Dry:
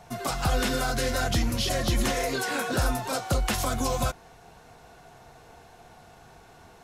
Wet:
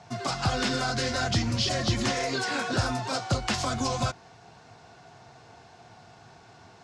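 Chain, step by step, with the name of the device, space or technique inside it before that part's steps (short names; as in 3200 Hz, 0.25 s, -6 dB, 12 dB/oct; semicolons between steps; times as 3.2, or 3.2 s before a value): car door speaker (speaker cabinet 100–7400 Hz, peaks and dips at 110 Hz +8 dB, 490 Hz -4 dB, 4800 Hz +5 dB)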